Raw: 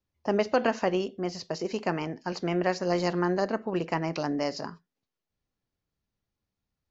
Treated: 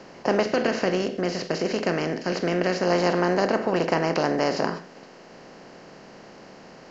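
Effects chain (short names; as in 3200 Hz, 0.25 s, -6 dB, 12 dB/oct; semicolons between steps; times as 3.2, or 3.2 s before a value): per-bin compression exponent 0.4; 0.44–2.83 bell 890 Hz -8 dB 0.91 oct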